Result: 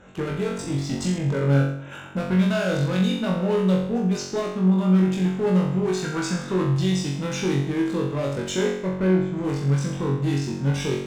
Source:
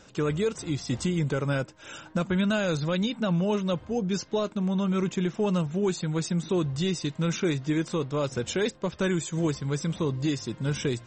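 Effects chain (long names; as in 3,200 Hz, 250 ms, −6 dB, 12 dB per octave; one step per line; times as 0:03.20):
adaptive Wiener filter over 9 samples
0:05.95–0:06.68: parametric band 1,400 Hz +11 dB 0.97 octaves
0:08.62–0:09.35: low-pass filter 2,200 Hz → 1,300 Hz 12 dB per octave
in parallel at +2 dB: brickwall limiter −25 dBFS, peak gain reduction 9 dB
on the sum: asymmetric clip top −19.5 dBFS
on a send: flutter between parallel walls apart 3.7 metres, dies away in 0.69 s
0:01.18–0:01.92: on the sum: one half of a high-frequency compander decoder only
level −4.5 dB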